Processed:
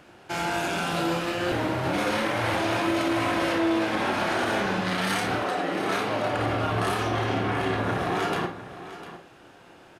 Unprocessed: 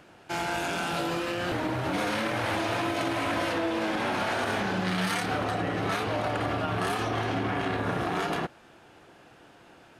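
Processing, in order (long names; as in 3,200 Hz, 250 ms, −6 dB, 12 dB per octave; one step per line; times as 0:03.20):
0:05.38–0:06.32: high-pass filter 300 Hz → 110 Hz 24 dB per octave
single-tap delay 702 ms −14 dB
on a send at −5 dB: convolution reverb RT60 0.35 s, pre-delay 30 ms
on the sum: level +1.5 dB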